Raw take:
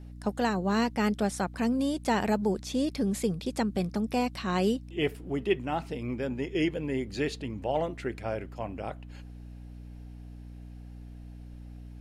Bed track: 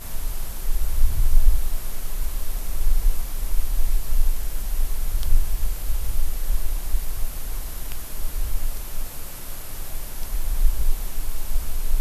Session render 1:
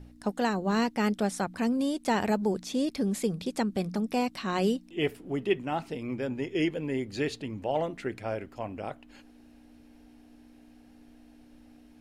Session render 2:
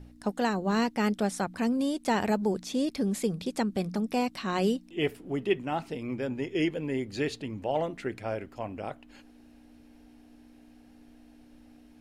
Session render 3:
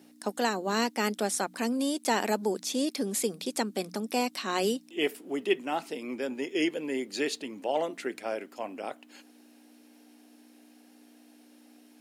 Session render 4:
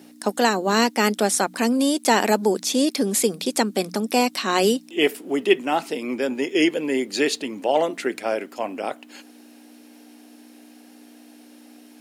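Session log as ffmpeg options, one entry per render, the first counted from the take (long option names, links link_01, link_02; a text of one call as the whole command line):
ffmpeg -i in.wav -af "bandreject=frequency=60:width_type=h:width=4,bandreject=frequency=120:width_type=h:width=4,bandreject=frequency=180:width_type=h:width=4" out.wav
ffmpeg -i in.wav -af anull out.wav
ffmpeg -i in.wav -af "highpass=frequency=240:width=0.5412,highpass=frequency=240:width=1.3066,highshelf=frequency=4500:gain=11" out.wav
ffmpeg -i in.wav -af "volume=9dB" out.wav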